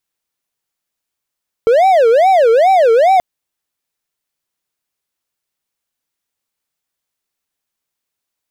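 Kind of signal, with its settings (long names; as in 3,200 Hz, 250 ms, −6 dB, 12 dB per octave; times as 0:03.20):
siren wail 449–774 Hz 2.4 per second triangle −4.5 dBFS 1.53 s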